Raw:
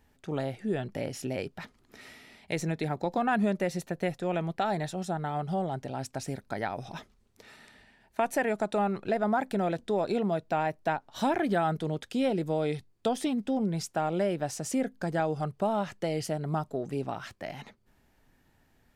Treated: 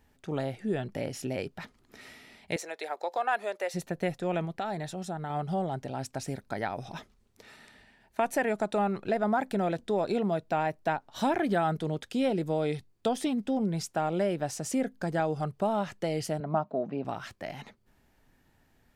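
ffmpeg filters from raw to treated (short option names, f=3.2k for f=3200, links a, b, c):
-filter_complex "[0:a]asettb=1/sr,asplit=3[a][b][c];[a]atrim=end=2.564[d];[b]atrim=start=2.56:end=3.74,asetpts=PTS-STARTPTS,afade=t=in:d=0.004:c=qsin,afade=t=out:st=1.176:d=0.004:c=qsin,highpass=f=480:w=0.5412,highpass=f=480:w=1.3066[e];[c]atrim=start=3.736[f];[d][e]acrossfade=d=0.004:c1=hsin:c2=qsin[g];[g][f]acrossfade=d=0.004:c1=qsin:c2=hsin,asettb=1/sr,asplit=3[h][i][j];[h]atrim=end=4.454[k];[i]atrim=start=4.45:end=5.3,asetpts=PTS-STARTPTS,afade=t=in:d=0.004:c=qsin,afade=t=out:st=0.846:d=0.004:c=qsin,acompressor=threshold=-37dB:ratio=1.5:attack=3.2:release=140:knee=1:detection=peak[l];[j]atrim=start=5.296[m];[k][l]acrossfade=d=0.004:c1=hsin:c2=qsin[n];[n][m]acrossfade=d=0.004:c1=qsin:c2=hsin,asettb=1/sr,asplit=3[o][p][q];[o]atrim=end=16.404[r];[p]atrim=start=16.4:end=17.05,asetpts=PTS-STARTPTS,afade=t=in:d=0.004:c=qsin,afade=t=out:st=0.646:d=0.004:c=qsin,highpass=180,equalizer=f=210:t=q:w=4:g=8,equalizer=f=400:t=q:w=4:g=-4,equalizer=f=640:t=q:w=4:g=8,equalizer=f=1k:t=q:w=4:g=4,equalizer=f=2k:t=q:w=4:g=-4,equalizer=f=3.3k:t=q:w=4:g=-7,lowpass=f=3.5k:w=0.5412,lowpass=f=3.5k:w=1.3066[s];[q]atrim=start=17.046[t];[r][s]acrossfade=d=0.004:c1=hsin:c2=qsin[u];[u][t]acrossfade=d=0.004:c1=qsin:c2=hsin"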